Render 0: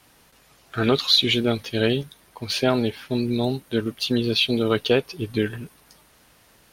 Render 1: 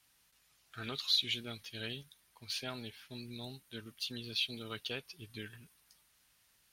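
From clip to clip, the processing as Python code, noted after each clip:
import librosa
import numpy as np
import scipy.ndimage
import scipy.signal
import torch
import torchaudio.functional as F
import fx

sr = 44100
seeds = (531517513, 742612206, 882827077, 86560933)

y = fx.tone_stack(x, sr, knobs='5-5-5')
y = y * 10.0 ** (-5.5 / 20.0)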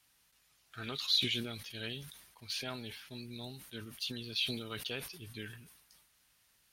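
y = fx.sustainer(x, sr, db_per_s=60.0)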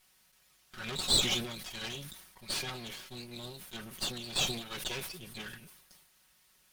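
y = fx.lower_of_two(x, sr, delay_ms=5.4)
y = y * 10.0 ** (5.5 / 20.0)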